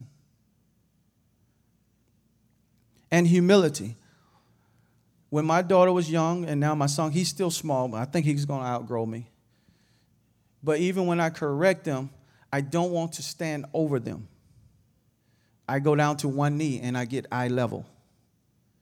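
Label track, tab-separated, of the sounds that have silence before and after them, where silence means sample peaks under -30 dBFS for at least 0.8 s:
3.120000	3.900000	sound
5.330000	9.200000	sound
10.670000	14.150000	sound
15.690000	17.800000	sound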